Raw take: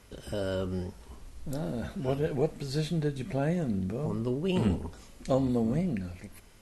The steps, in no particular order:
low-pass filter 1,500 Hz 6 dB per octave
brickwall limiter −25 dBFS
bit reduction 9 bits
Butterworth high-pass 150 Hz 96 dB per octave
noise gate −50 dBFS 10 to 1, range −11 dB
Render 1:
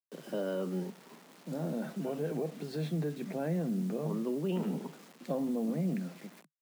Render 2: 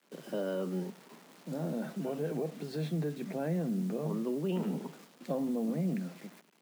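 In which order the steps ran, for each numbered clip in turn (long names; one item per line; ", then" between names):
noise gate, then low-pass filter, then brickwall limiter, then bit reduction, then Butterworth high-pass
low-pass filter, then brickwall limiter, then bit reduction, then noise gate, then Butterworth high-pass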